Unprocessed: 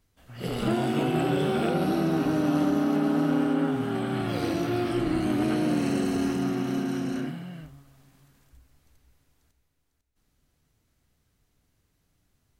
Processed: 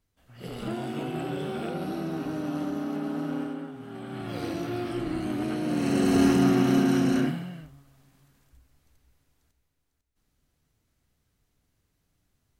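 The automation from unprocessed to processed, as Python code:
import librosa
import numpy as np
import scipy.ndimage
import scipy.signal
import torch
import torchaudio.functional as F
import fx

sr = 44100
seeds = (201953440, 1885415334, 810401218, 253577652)

y = fx.gain(x, sr, db=fx.line((3.41, -7.0), (3.73, -14.5), (4.39, -4.5), (5.62, -4.5), (6.2, 6.5), (7.25, 6.5), (7.65, -2.5)))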